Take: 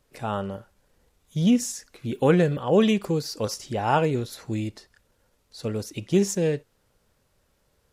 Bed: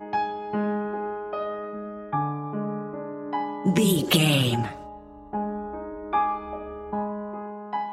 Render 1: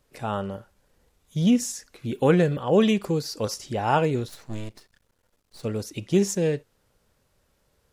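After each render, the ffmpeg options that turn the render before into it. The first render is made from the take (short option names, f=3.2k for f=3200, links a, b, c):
-filter_complex "[0:a]asettb=1/sr,asplit=3[a][b][c];[a]atrim=end=4.284[d];[b]atrim=start=4.28:end=5.63,asetpts=PTS-STARTPTS,afade=t=in:d=0.004:c=qsin,afade=t=out:st=1.346:d=0.004:c=qsin,aeval=exprs='max(val(0),0)':c=same[e];[c]atrim=start=5.626[f];[d][e]acrossfade=d=0.004:c1=hsin:c2=qsin[g];[g][f]acrossfade=d=0.004:c1=qsin:c2=hsin"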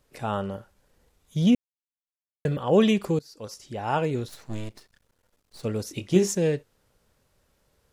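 -filter_complex "[0:a]asettb=1/sr,asplit=3[a][b][c];[a]atrim=end=5.844[d];[b]atrim=start=5.84:end=6.32,asetpts=PTS-STARTPTS,afade=t=in:d=0.004:c=qsin,afade=t=out:st=0.476:d=0.004:c=qsin,asplit=2[e][f];[f]adelay=22,volume=-7dB[g];[e][g]amix=inputs=2:normalize=0,atrim=end_sample=21168[h];[c]atrim=start=6.316[i];[d][h]acrossfade=d=0.004:c1=hsin:c2=qsin[j];[j][i]acrossfade=d=0.004:c1=qsin:c2=hsin,asplit=4[k][l][m][n];[k]atrim=end=1.55,asetpts=PTS-STARTPTS,afade=t=out:st=1.546:d=0.004:c=hsin[o];[l]atrim=start=1.55:end=2.45,asetpts=PTS-STARTPTS,volume=0[p];[m]atrim=start=2.45:end=3.19,asetpts=PTS-STARTPTS,afade=t=in:d=0.004:c=hsin,afade=t=out:st=0.736:d=0.004:c=hsin:silence=0.112202[q];[n]atrim=start=3.19,asetpts=PTS-STARTPTS,afade=t=in:d=1.32:silence=0.112202[r];[o][p][q][r]concat=n=4:v=0:a=1"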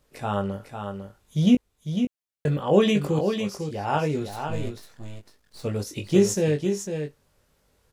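-filter_complex "[0:a]asplit=2[a][b];[b]adelay=20,volume=-5dB[c];[a][c]amix=inputs=2:normalize=0,aecho=1:1:501:0.447"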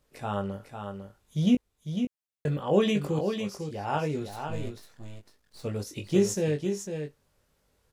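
-af "volume=-4.5dB"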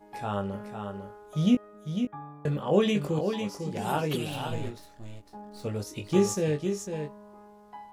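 -filter_complex "[1:a]volume=-16dB[a];[0:a][a]amix=inputs=2:normalize=0"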